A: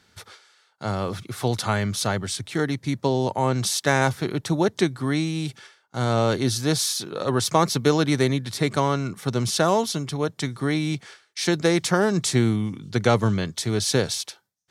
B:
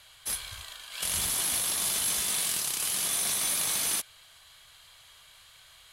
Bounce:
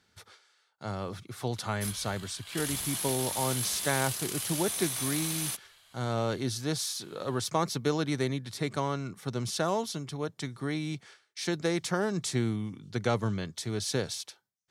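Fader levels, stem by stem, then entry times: -9.0 dB, -5.5 dB; 0.00 s, 1.55 s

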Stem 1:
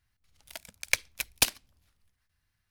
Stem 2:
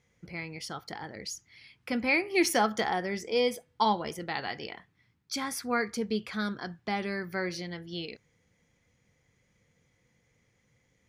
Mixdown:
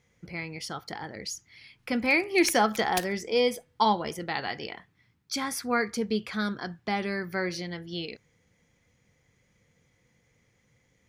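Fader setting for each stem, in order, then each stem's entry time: -9.5 dB, +2.5 dB; 1.55 s, 0.00 s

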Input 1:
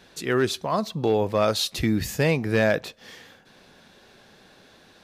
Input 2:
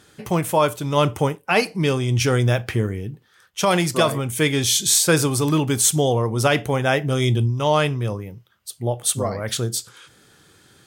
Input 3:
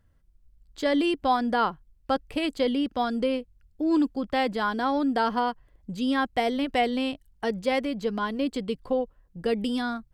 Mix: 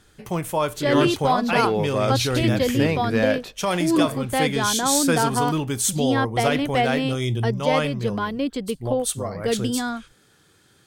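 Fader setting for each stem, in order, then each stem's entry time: -1.5 dB, -5.0 dB, +2.5 dB; 0.60 s, 0.00 s, 0.00 s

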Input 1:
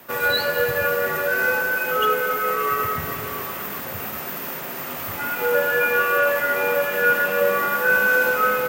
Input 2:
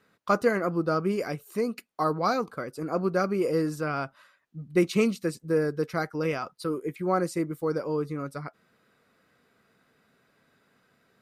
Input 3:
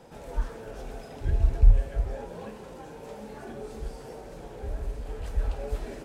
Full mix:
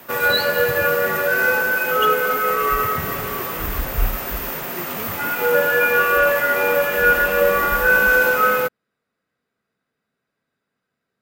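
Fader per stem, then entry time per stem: +3.0 dB, -12.5 dB, -4.0 dB; 0.00 s, 0.00 s, 2.35 s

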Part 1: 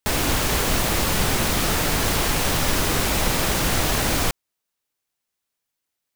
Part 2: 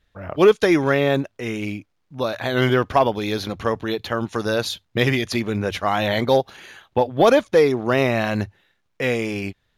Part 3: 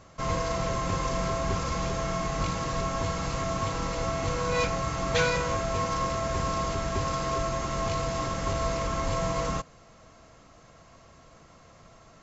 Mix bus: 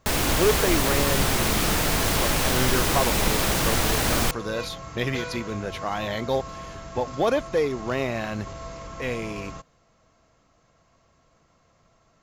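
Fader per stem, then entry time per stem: -1.5 dB, -8.0 dB, -9.0 dB; 0.00 s, 0.00 s, 0.00 s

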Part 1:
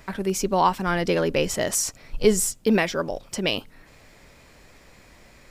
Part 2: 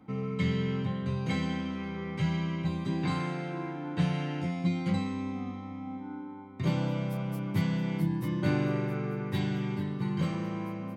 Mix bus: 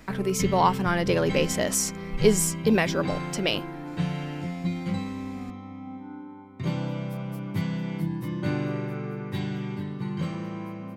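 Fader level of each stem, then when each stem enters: -1.5 dB, 0.0 dB; 0.00 s, 0.00 s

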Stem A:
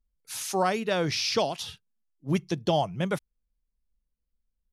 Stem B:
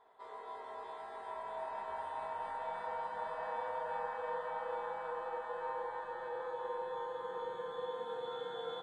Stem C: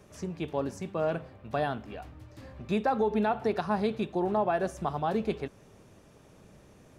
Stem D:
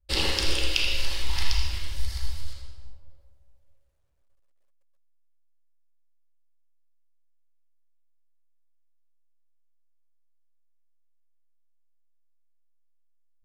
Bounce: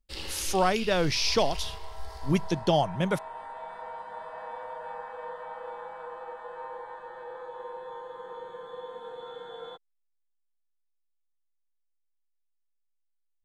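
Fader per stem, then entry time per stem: +1.0 dB, 0.0 dB, mute, -13.0 dB; 0.00 s, 0.95 s, mute, 0.00 s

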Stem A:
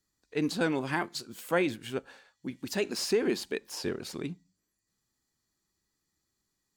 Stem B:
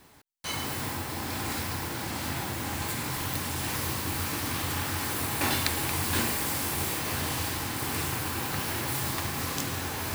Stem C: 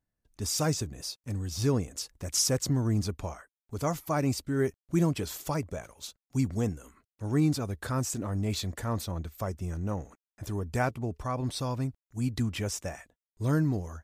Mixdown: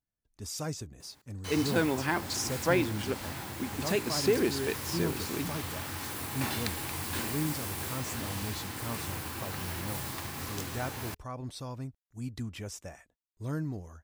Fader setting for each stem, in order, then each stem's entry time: +0.5 dB, -7.0 dB, -8.0 dB; 1.15 s, 1.00 s, 0.00 s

